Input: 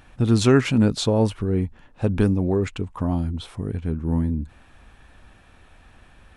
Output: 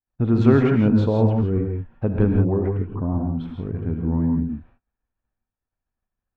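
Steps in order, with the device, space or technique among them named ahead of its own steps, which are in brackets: hearing-loss simulation (LPF 1600 Hz 12 dB/oct; expander -39 dBFS); 2.66–3.32 Bessel low-pass 1000 Hz, order 2; gate -46 dBFS, range -22 dB; non-linear reverb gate 0.19 s rising, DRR 2.5 dB; gain -1 dB

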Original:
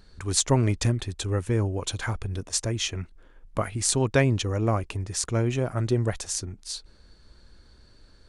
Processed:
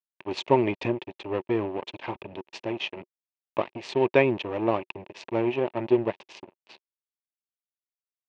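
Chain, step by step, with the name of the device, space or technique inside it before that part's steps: blown loudspeaker (crossover distortion -32 dBFS; speaker cabinet 200–3500 Hz, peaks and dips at 370 Hz +8 dB, 590 Hz +5 dB, 920 Hz +8 dB, 1400 Hz -8 dB, 2600 Hz +9 dB)

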